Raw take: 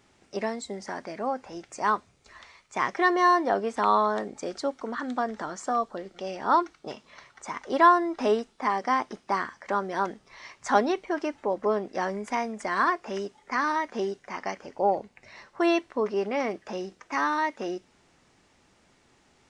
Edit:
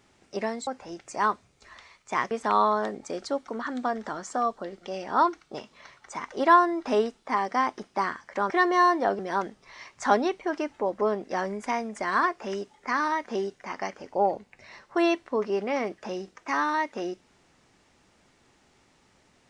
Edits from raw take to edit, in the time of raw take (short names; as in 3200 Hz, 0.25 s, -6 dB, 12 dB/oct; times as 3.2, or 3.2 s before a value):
0.67–1.31 cut
2.95–3.64 move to 9.83